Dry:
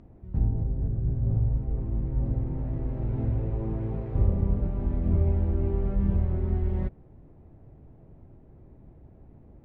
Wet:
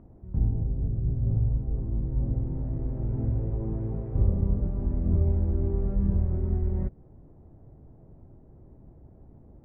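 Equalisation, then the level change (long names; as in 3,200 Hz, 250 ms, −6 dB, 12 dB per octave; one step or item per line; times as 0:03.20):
low-pass filter 1,300 Hz 12 dB per octave
dynamic equaliser 930 Hz, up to −4 dB, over −49 dBFS, Q 0.76
0.0 dB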